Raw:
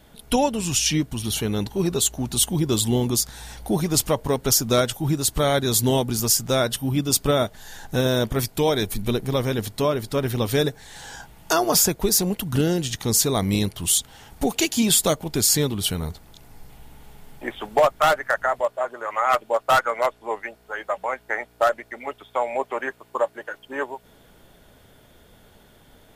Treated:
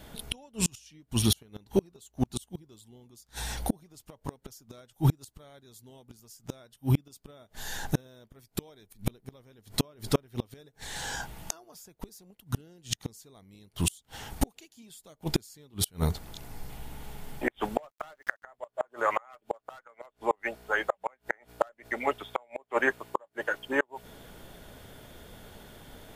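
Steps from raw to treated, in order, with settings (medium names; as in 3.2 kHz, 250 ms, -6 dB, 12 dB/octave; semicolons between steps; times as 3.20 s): 17.77–18.44 s: small samples zeroed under -40.5 dBFS; inverted gate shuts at -15 dBFS, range -36 dB; trim +3.5 dB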